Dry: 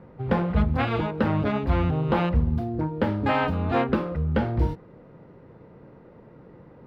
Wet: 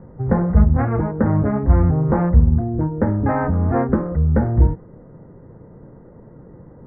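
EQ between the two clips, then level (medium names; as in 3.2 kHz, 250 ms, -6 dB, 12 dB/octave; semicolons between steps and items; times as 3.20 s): elliptic low-pass 1.9 kHz, stop band 50 dB; tilt EQ -2.5 dB/octave; +1.5 dB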